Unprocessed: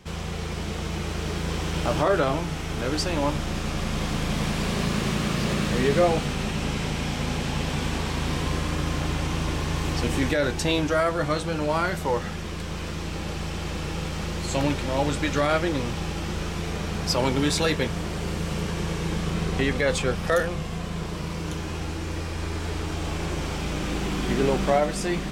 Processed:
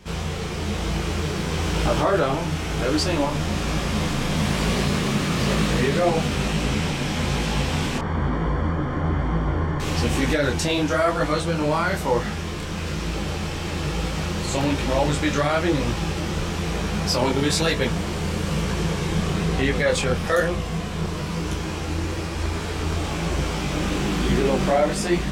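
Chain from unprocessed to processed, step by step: in parallel at +3 dB: peak limiter -16.5 dBFS, peak gain reduction 7 dB; 7.98–9.80 s: on the sum: Savitzky-Golay filter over 41 samples; detune thickener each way 37 cents

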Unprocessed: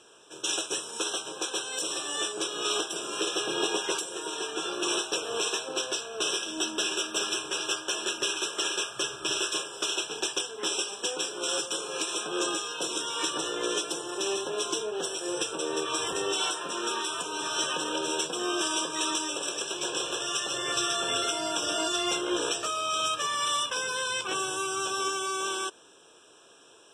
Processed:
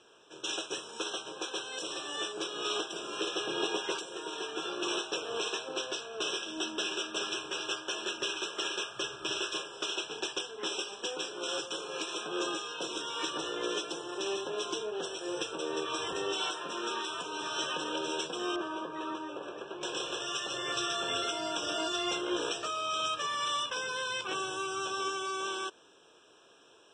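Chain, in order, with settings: low-pass 5 kHz 12 dB/octave, from 18.56 s 1.5 kHz, from 19.83 s 5.4 kHz; trim -3.5 dB

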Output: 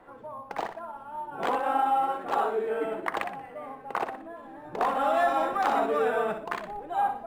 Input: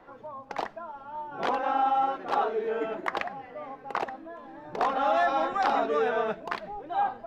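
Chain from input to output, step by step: on a send: flutter echo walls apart 10.4 m, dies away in 0.41 s; on the sum: decimation joined by straight lines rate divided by 4×

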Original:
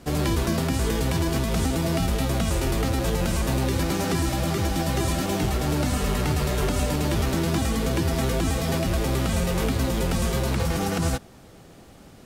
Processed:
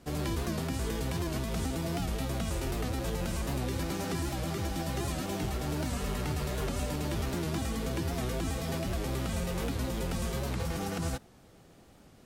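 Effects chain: warped record 78 rpm, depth 100 cents; trim -9 dB

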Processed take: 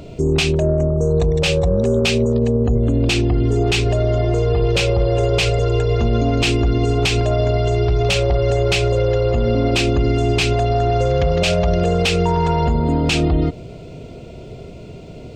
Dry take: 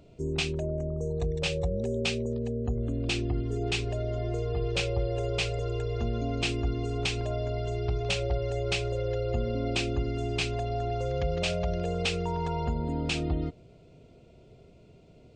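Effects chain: saturation -21 dBFS, distortion -21 dB; loudness maximiser +28.5 dB; trim -9 dB

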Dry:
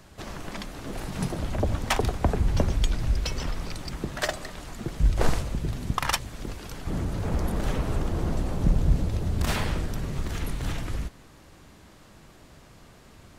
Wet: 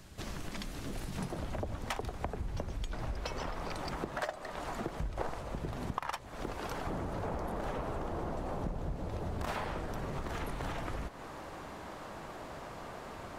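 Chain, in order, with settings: peaking EQ 810 Hz -4.5 dB 2.7 oct, from 1.18 s +4.5 dB, from 2.93 s +14 dB; compression 6:1, threshold -34 dBFS, peak gain reduction 22.5 dB; trim -1 dB

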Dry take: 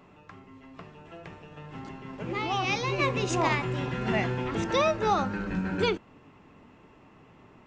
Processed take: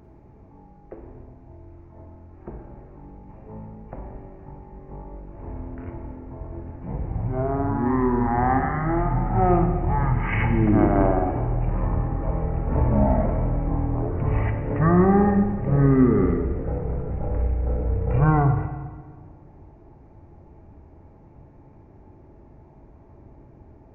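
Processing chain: wide varispeed 0.32×; filtered feedback delay 120 ms, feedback 78%, low-pass 1.7 kHz, level -20.5 dB; on a send at -6.5 dB: reverberation RT60 1.4 s, pre-delay 39 ms; on the sum: trim +6 dB

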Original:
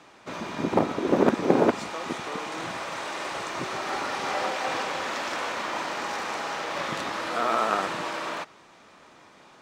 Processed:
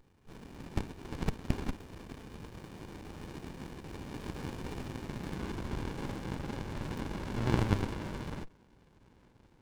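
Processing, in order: Chebyshev shaper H 3 -16 dB, 6 -17 dB, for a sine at -3 dBFS; high-pass sweep 2.5 kHz -> 610 Hz, 4.92–5.98 s; sliding maximum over 65 samples; trim -1 dB

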